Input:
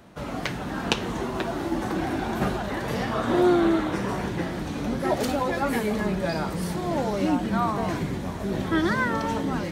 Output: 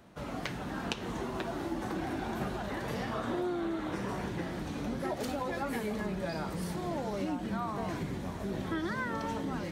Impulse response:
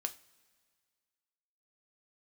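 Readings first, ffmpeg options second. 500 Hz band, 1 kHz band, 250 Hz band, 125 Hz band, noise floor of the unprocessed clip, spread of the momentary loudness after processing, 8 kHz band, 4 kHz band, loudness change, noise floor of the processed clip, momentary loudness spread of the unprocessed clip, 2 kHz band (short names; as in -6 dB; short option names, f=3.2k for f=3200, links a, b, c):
-10.0 dB, -9.5 dB, -9.5 dB, -8.5 dB, -32 dBFS, 3 LU, -8.5 dB, -9.5 dB, -9.5 dB, -40 dBFS, 8 LU, -9.5 dB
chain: -af "acompressor=threshold=-24dB:ratio=6,volume=-6.5dB"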